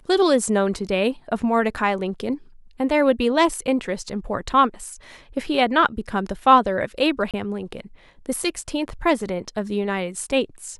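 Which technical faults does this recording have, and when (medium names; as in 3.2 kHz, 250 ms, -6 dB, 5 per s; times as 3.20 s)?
7.31–7.34 s: dropout 27 ms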